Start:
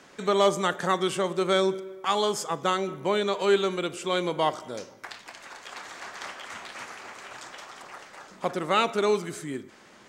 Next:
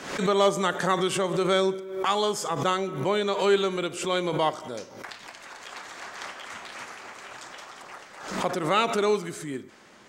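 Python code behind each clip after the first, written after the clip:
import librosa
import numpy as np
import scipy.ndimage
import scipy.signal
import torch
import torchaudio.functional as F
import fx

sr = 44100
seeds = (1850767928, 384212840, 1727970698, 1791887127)

y = fx.pre_swell(x, sr, db_per_s=74.0)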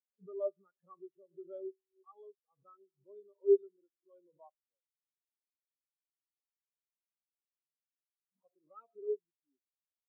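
y = fx.spectral_expand(x, sr, expansion=4.0)
y = F.gain(torch.from_numpy(y), -7.5).numpy()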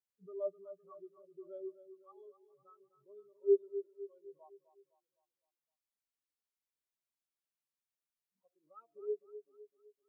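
y = fx.echo_feedback(x, sr, ms=255, feedback_pct=47, wet_db=-12.5)
y = F.gain(torch.from_numpy(y), -2.0).numpy()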